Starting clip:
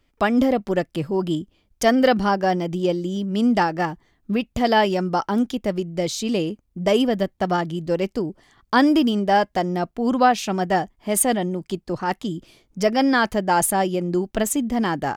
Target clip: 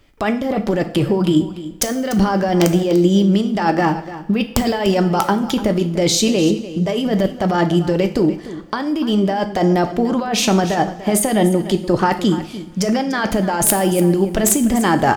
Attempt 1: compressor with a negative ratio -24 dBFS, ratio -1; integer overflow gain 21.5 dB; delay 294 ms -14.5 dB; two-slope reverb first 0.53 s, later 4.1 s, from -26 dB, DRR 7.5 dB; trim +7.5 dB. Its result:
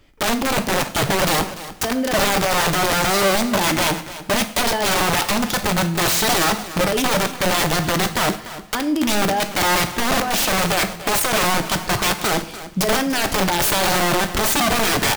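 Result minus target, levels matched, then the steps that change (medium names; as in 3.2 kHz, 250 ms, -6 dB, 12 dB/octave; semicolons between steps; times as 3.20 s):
integer overflow: distortion +35 dB
change: integer overflow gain 12 dB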